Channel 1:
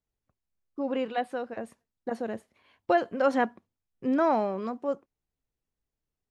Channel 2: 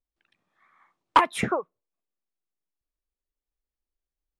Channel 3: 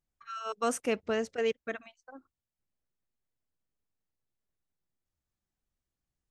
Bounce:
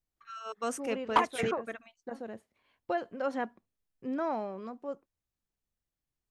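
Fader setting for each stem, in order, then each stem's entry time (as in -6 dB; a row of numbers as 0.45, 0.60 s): -8.5, -7.5, -4.0 dB; 0.00, 0.00, 0.00 s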